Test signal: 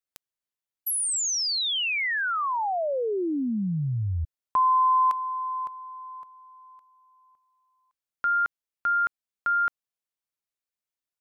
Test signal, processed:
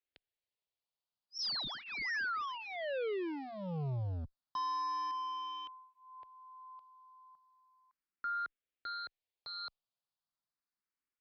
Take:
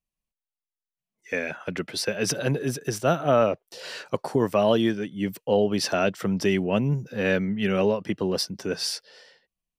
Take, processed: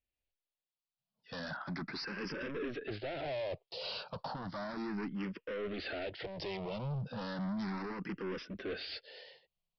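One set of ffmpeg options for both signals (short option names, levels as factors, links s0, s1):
-filter_complex "[0:a]alimiter=limit=0.1:level=0:latency=1:release=46,aresample=11025,volume=59.6,asoftclip=hard,volume=0.0168,aresample=44100,asplit=2[s0][s1];[s1]afreqshift=0.34[s2];[s0][s2]amix=inputs=2:normalize=1,volume=1.12"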